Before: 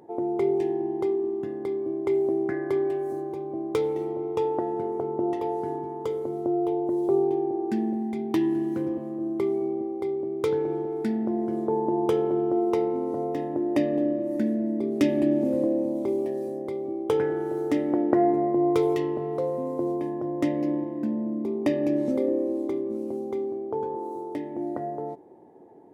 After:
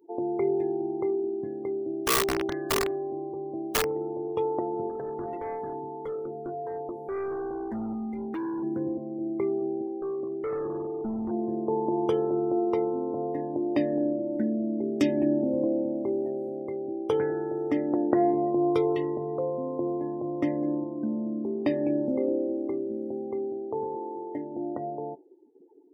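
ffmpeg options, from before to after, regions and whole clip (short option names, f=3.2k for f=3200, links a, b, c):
-filter_complex "[0:a]asettb=1/sr,asplit=3[a][b][c];[a]atrim=end=1.684[d];[b]atrim=start=1.68:end=4.28,asetpts=PTS-STARTPTS,afade=t=in:d=0.004:c=qsin,afade=t=out:st=2.596:d=0.004:c=qsin,lowpass=1.9k,asplit=2[e][f];[f]adelay=159,lowpass=f=920:p=1,volume=-18dB,asplit=2[g][h];[h]adelay=159,lowpass=f=920:p=1,volume=0.37,asplit=2[i][j];[j]adelay=159,lowpass=f=920:p=1,volume=0.37[k];[e][g][i][k]amix=inputs=4:normalize=0,atrim=end_sample=114660,aeval=exprs='(mod(9.44*val(0)+1,2)-1)/9.44':c=same[l];[c]atrim=start=4.276[m];[d][l]acrossfade=d=0.004:c1=hsin:c2=qsin[n];[n][m]acrossfade=d=0.004:c1=qsin:c2=hsin,asettb=1/sr,asplit=3[o][p][q];[o]atrim=end=4.894[r];[p]atrim=start=4.89:end=8.63,asetpts=PTS-STARTPTS,afade=t=in:d=0.004:c=qsin,afade=t=out:st=3.736:d=0.004:c=qsin,bandreject=f=50:t=h:w=6,bandreject=f=100:t=h:w=6,bandreject=f=150:t=h:w=6,bandreject=f=200:t=h:w=6,bandreject=f=250:t=h:w=6,bandreject=f=300:t=h:w=6,bandreject=f=350:t=h:w=6,bandreject=f=400:t=h:w=6,bandreject=f=450:t=h:w=6,asoftclip=type=hard:threshold=-28dB[s];[q]atrim=start=8.626[t];[r][s]acrossfade=d=0.004:c1=hsin:c2=qsin[u];[u][t]acrossfade=d=0.004:c1=qsin:c2=hsin,asettb=1/sr,asplit=3[v][w][x];[v]atrim=end=9.874[y];[w]atrim=start=9.87:end=11.31,asetpts=PTS-STARTPTS,afade=t=in:d=0.004:c=qsin,afade=t=out:st=1.436:d=0.004:c=qsin,lowpass=f=1.3k:w=0.5412,lowpass=f=1.3k:w=1.3066,asoftclip=type=hard:threshold=-26.5dB[z];[x]atrim=start=11.306[aa];[y][z]acrossfade=d=0.004:c1=hsin:c2=qsin[ab];[ab][aa]acrossfade=d=0.004:c1=qsin:c2=hsin,afftdn=nr=29:nf=-41,aemphasis=mode=production:type=50kf,volume=-2dB"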